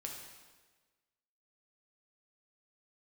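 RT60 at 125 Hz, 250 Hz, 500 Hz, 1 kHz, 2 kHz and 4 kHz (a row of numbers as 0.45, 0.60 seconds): 1.3, 1.4, 1.4, 1.3, 1.3, 1.2 seconds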